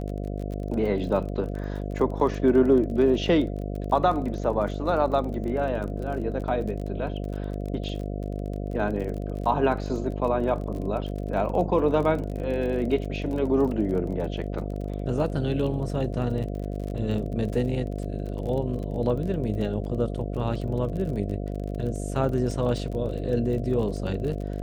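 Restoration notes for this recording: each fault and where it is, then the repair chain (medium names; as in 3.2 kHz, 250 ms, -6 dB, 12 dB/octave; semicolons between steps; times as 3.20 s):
buzz 50 Hz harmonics 14 -31 dBFS
crackle 31 per s -33 dBFS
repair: de-click; de-hum 50 Hz, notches 14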